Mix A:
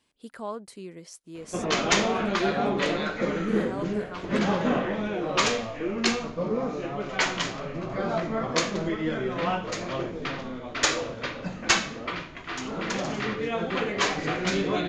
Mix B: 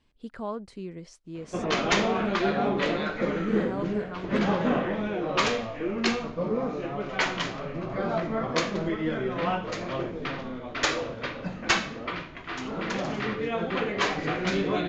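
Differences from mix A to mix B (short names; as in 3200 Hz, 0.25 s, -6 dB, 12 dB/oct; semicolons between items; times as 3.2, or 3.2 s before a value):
speech: remove HPF 280 Hz 6 dB/oct; master: add air absorption 100 m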